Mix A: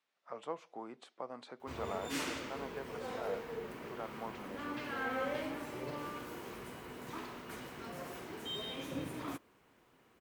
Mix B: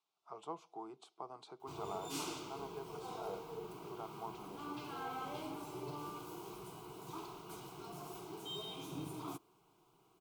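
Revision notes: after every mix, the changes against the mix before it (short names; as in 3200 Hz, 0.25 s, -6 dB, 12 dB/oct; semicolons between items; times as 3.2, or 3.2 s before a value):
master: add fixed phaser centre 360 Hz, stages 8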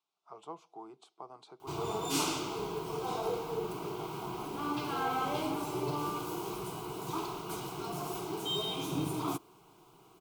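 background +10.5 dB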